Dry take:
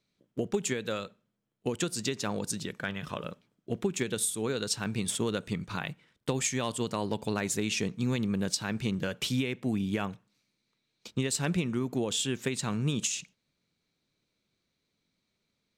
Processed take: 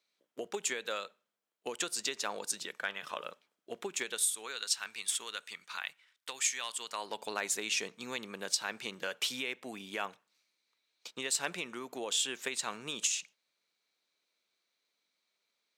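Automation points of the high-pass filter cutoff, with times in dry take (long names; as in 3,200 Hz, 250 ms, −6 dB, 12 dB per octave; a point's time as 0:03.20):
0:03.95 630 Hz
0:04.64 1,400 Hz
0:06.78 1,400 Hz
0:07.22 630 Hz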